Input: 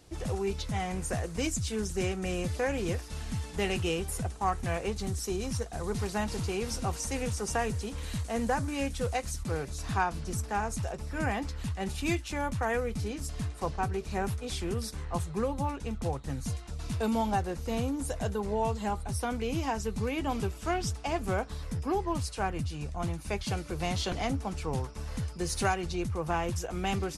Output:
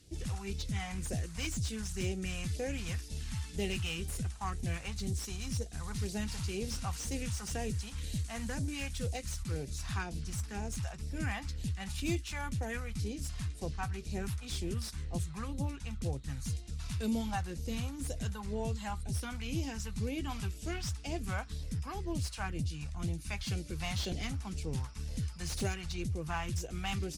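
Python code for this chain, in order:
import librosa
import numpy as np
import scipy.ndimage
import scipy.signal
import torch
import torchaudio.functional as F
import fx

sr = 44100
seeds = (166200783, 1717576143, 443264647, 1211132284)

y = fx.phaser_stages(x, sr, stages=2, low_hz=370.0, high_hz=1200.0, hz=2.0, feedback_pct=25)
y = fx.cheby_harmonics(y, sr, harmonics=(8,), levels_db=(-35,), full_scale_db=-19.5)
y = fx.slew_limit(y, sr, full_power_hz=91.0)
y = y * 10.0 ** (-2.0 / 20.0)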